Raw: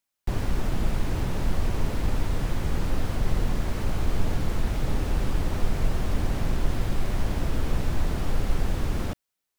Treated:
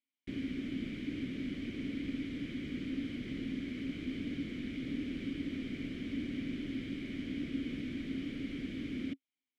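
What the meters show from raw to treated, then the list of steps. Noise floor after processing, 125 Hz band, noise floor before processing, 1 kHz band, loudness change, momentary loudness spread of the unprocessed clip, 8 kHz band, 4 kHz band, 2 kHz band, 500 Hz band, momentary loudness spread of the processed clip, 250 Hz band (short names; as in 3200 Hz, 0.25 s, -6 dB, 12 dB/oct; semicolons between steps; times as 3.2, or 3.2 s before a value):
under -85 dBFS, -18.5 dB, -83 dBFS, under -25 dB, -9.5 dB, 1 LU, under -20 dB, -7.5 dB, -8.0 dB, -13.5 dB, 2 LU, -2.0 dB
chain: vowel filter i; gain +5 dB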